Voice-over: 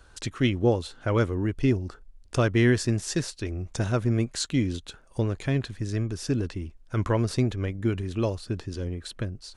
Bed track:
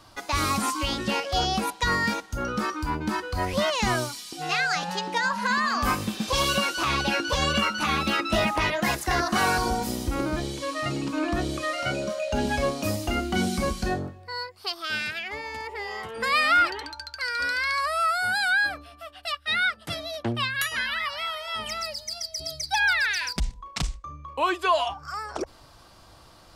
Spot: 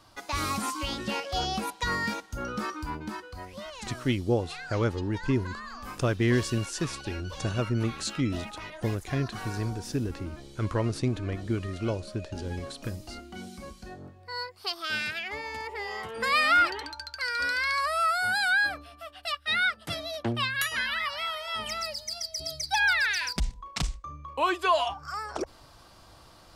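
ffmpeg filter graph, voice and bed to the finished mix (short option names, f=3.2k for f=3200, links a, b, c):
-filter_complex "[0:a]adelay=3650,volume=-3.5dB[a];[1:a]volume=10dB,afade=t=out:st=2.72:d=0.78:silence=0.266073,afade=t=in:st=13.97:d=0.43:silence=0.177828[b];[a][b]amix=inputs=2:normalize=0"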